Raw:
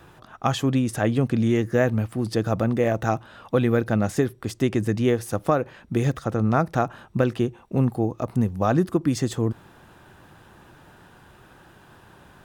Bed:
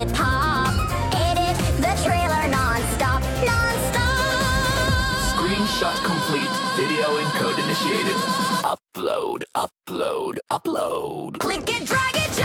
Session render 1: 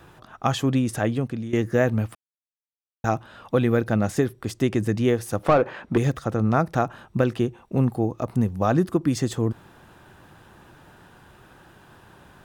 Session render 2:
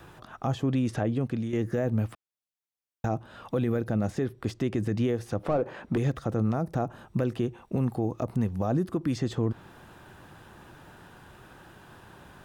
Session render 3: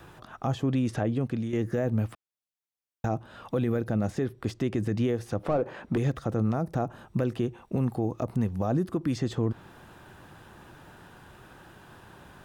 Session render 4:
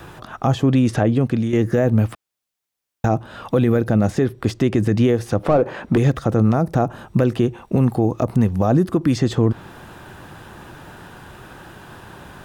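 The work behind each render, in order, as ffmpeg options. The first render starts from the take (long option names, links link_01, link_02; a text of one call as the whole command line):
ffmpeg -i in.wav -filter_complex "[0:a]asettb=1/sr,asplit=3[link_01][link_02][link_03];[link_01]atrim=end=5.434[link_04];[link_02]atrim=start=5.43:end=5.98,asetpts=PTS-STARTPTS,afade=type=in:duration=0.004:curve=qsin,afade=type=out:start_time=0.546:duration=0.004:curve=qsin,asplit=2[link_05][link_06];[link_06]highpass=frequency=720:poles=1,volume=20dB,asoftclip=type=tanh:threshold=-7.5dB[link_07];[link_05][link_07]amix=inputs=2:normalize=0,lowpass=frequency=1200:poles=1,volume=-6dB[link_08];[link_03]atrim=start=5.976[link_09];[link_04][link_08]acrossfade=duration=0.004:curve1=hsin:curve2=qsin[link_10];[link_10][link_09]acrossfade=duration=0.004:curve1=qsin:curve2=hsin,asplit=4[link_11][link_12][link_13][link_14];[link_11]atrim=end=1.53,asetpts=PTS-STARTPTS,afade=type=out:start_time=0.95:duration=0.58:silence=0.177828[link_15];[link_12]atrim=start=1.53:end=2.15,asetpts=PTS-STARTPTS,afade=type=in:duration=0.004:curve=hsin:silence=0.177828,afade=type=out:start_time=0.616:duration=0.004:curve=hsin[link_16];[link_13]atrim=start=2.15:end=3.04,asetpts=PTS-STARTPTS,volume=0[link_17];[link_14]atrim=start=3.04,asetpts=PTS-STARTPTS,afade=type=in:duration=0.004:curve=hsin[link_18];[link_15][link_16][link_17][link_18]concat=n=4:v=0:a=1" out.wav
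ffmpeg -i in.wav -filter_complex "[0:a]acrossover=split=790|5500[link_01][link_02][link_03];[link_01]acompressor=threshold=-22dB:ratio=4[link_04];[link_02]acompressor=threshold=-41dB:ratio=4[link_05];[link_03]acompressor=threshold=-60dB:ratio=4[link_06];[link_04][link_05][link_06]amix=inputs=3:normalize=0,alimiter=limit=-18.5dB:level=0:latency=1:release=11" out.wav
ffmpeg -i in.wav -af anull out.wav
ffmpeg -i in.wav -af "volume=10.5dB" out.wav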